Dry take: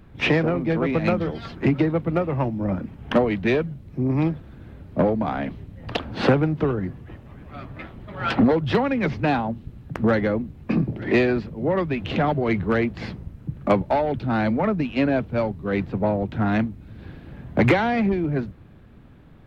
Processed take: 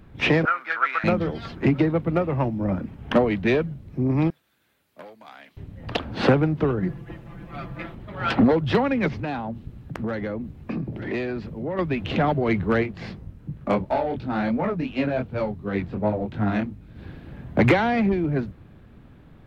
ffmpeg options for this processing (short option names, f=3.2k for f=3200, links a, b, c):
-filter_complex "[0:a]asettb=1/sr,asplit=3[a][b][c];[a]atrim=end=0.454[d];[b]atrim=start=0.45:end=1.04,asetpts=PTS-STARTPTS,afade=t=in:d=0.004:c=qsin,afade=t=out:st=0.586:d=0.004:c=qsin,highpass=f=1.4k:t=q:w=7.4[e];[c]atrim=start=1.036[f];[d][e]acrossfade=d=0.004:c1=hsin:c2=qsin[g];[g][f]acrossfade=d=0.004:c1=qsin:c2=hsin,asettb=1/sr,asplit=3[h][i][j];[h]atrim=end=4.304[k];[i]atrim=start=4.3:end=5.57,asetpts=PTS-STARTPTS,afade=t=in:d=0.004:c=qsin,afade=t=out:st=1.266:d=0.004:c=qsin,aderivative[l];[j]atrim=start=5.566[m];[k][l]acrossfade=d=0.004:c1=hsin:c2=qsin[n];[n][m]acrossfade=d=0.004:c1=qsin:c2=hsin,asettb=1/sr,asplit=3[o][p][q];[o]atrim=end=6.824[r];[p]atrim=start=6.82:end=7.95,asetpts=PTS-STARTPTS,afade=t=in:d=0.004:c=qsin,afade=t=out:st=1.126:d=0.004:c=qsin,aecho=1:1:5.9:0.99,atrim=end_sample=49833[s];[q]atrim=start=7.946[t];[r][s]acrossfade=d=0.004:c1=hsin:c2=qsin[u];[u][t]acrossfade=d=0.004:c1=qsin:c2=hsin,asettb=1/sr,asplit=3[v][w][x];[v]atrim=end=9.084[y];[w]atrim=start=9.08:end=11.79,asetpts=PTS-STARTPTS,afade=t=in:d=0.004:c=qsin,afade=t=out:st=2.706:d=0.004:c=qsin,acompressor=threshold=-28dB:ratio=2.5:attack=3.2:release=140:knee=1:detection=peak[z];[x]atrim=start=11.786[aa];[y][z]acrossfade=d=0.004:c1=hsin:c2=qsin[ab];[ab][aa]acrossfade=d=0.004:c1=qsin:c2=hsin,asplit=3[ac][ad][ae];[ac]afade=t=out:st=12.82:d=0.02[af];[ad]flanger=delay=19:depth=5.2:speed=2.8,afade=t=in:st=12.82:d=0.02,afade=t=out:st=16.95:d=0.02[ag];[ae]afade=t=in:st=16.95:d=0.02[ah];[af][ag][ah]amix=inputs=3:normalize=0"